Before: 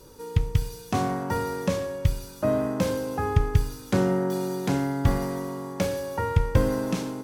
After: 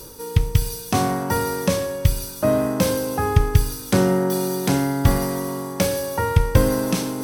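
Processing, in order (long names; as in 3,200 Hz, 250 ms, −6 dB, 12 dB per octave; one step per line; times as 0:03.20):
high-shelf EQ 5,200 Hz +11 dB
notch filter 7,000 Hz, Q 7.9
reversed playback
upward compression, threshold −29 dBFS
reversed playback
level +5 dB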